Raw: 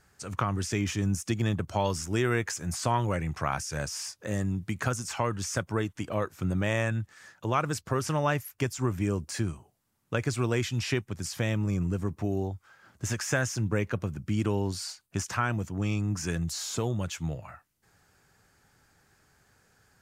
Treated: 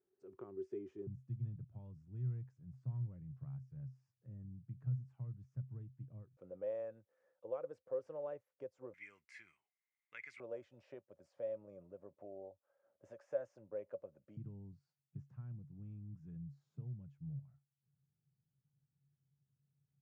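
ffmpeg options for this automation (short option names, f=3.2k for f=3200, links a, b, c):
-af "asetnsamples=n=441:p=0,asendcmd='1.07 bandpass f 130;6.37 bandpass f 520;8.94 bandpass f 2100;10.4 bandpass f 560;14.37 bandpass f 140',bandpass=f=380:t=q:w=16:csg=0"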